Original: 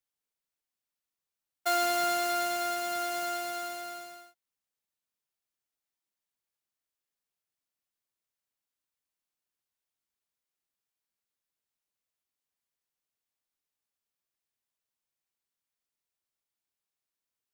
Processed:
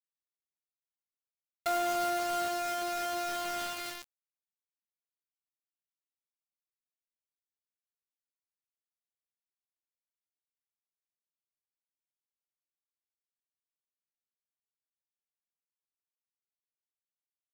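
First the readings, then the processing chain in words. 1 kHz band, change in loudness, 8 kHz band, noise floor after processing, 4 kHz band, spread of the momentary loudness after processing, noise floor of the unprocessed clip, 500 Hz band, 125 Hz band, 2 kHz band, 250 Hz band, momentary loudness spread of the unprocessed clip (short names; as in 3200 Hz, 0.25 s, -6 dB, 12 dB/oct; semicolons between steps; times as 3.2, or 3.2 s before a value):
-2.0 dB, -2.5 dB, -3.5 dB, under -85 dBFS, -3.5 dB, 8 LU, under -85 dBFS, -1.0 dB, n/a, -3.5 dB, -0.5 dB, 13 LU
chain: treble ducked by the level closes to 1200 Hz, closed at -30.5 dBFS; dynamic EQ 3400 Hz, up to +6 dB, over -53 dBFS, Q 1.1; bit-crush 6-bit; gain -1 dB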